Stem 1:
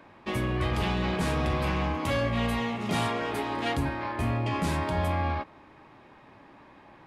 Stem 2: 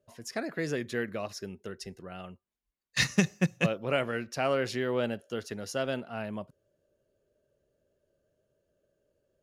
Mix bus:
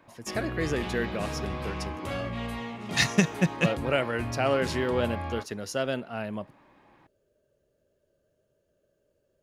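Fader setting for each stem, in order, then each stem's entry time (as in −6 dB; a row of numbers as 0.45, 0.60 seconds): −6.5, +2.5 decibels; 0.00, 0.00 seconds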